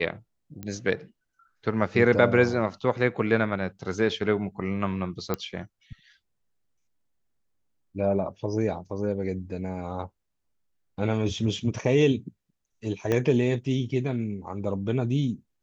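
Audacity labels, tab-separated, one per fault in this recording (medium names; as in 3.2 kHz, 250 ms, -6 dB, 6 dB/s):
0.630000	0.630000	pop -22 dBFS
5.340000	5.340000	pop -13 dBFS
13.120000	13.120000	pop -13 dBFS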